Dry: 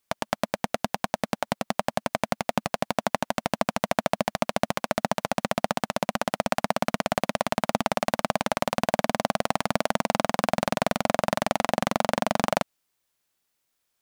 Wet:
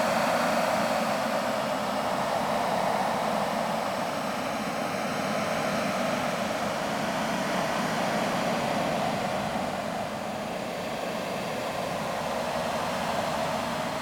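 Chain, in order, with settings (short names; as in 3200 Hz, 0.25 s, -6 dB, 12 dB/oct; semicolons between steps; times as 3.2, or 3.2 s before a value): grains 0.1 s, pitch spread up and down by 0 st; Paulstretch 15×, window 0.25 s, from 6.56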